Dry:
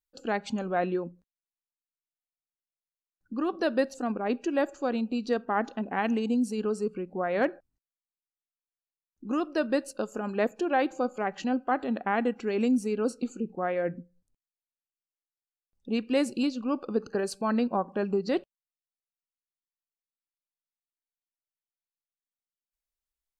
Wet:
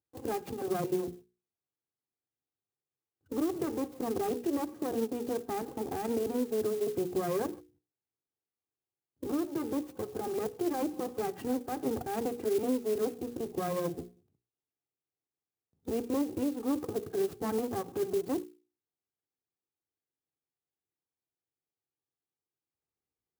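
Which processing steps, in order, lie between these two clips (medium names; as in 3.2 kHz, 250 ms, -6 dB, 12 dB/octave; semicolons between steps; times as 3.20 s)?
comb filter that takes the minimum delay 2.5 ms; bass shelf 420 Hz +10 dB; compression, threshold -31 dBFS, peak gain reduction 13 dB; hum notches 60/120/180/240/300/360/420/480 Hz; peak limiter -27.5 dBFS, peak gain reduction 7.5 dB; high-pass 100 Hz 24 dB/octave; tilt shelf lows +7.5 dB, about 1.1 kHz; sampling jitter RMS 0.049 ms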